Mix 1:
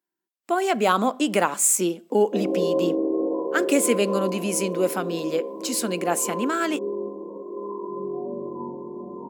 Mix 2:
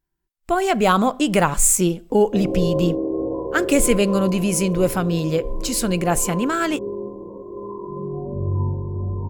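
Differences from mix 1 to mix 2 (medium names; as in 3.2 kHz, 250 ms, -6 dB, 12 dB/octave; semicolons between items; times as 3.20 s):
speech +3.0 dB; master: remove steep high-pass 210 Hz 36 dB/octave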